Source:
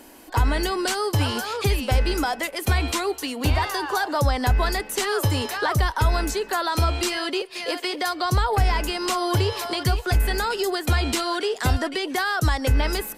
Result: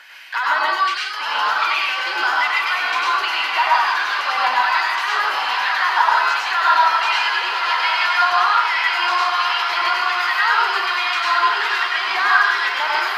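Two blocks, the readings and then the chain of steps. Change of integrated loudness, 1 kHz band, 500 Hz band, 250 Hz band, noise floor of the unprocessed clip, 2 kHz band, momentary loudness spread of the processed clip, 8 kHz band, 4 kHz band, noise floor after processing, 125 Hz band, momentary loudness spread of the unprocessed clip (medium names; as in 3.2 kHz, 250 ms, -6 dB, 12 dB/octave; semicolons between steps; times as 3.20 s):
+6.5 dB, +10.0 dB, -7.0 dB, under -15 dB, -40 dBFS, +11.5 dB, 4 LU, -7.0 dB, +6.5 dB, -24 dBFS, under -40 dB, 4 LU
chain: tilt EQ +3 dB/octave; in parallel at -9 dB: wavefolder -21 dBFS; on the sum: gain riding 0.5 s; hum notches 50/100 Hz; LFO high-pass sine 1.3 Hz 890–2300 Hz; distance through air 270 m; on a send: echo that smears into a reverb 1029 ms, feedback 71%, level -6 dB; on the sum: plate-style reverb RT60 0.58 s, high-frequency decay 0.75×, pre-delay 85 ms, DRR -3.5 dB; trim -1 dB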